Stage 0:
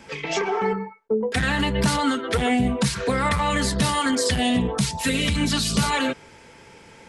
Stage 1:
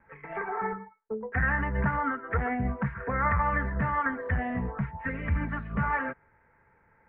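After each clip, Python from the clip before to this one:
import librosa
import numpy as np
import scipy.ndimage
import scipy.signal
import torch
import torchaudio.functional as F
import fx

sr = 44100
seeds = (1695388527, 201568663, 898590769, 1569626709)

y = scipy.signal.sosfilt(scipy.signal.butter(8, 1900.0, 'lowpass', fs=sr, output='sos'), x)
y = fx.peak_eq(y, sr, hz=320.0, db=-13.0, octaves=2.7)
y = fx.upward_expand(y, sr, threshold_db=-48.0, expansion=1.5)
y = y * 10.0 ** (3.0 / 20.0)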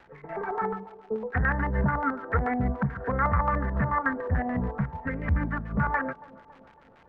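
y = fx.dmg_crackle(x, sr, seeds[0], per_s=390.0, level_db=-39.0)
y = fx.filter_lfo_lowpass(y, sr, shape='square', hz=6.9, low_hz=650.0, high_hz=1700.0, q=0.99)
y = fx.echo_wet_bandpass(y, sr, ms=278, feedback_pct=56, hz=510.0, wet_db=-17.5)
y = y * 10.0 ** (2.5 / 20.0)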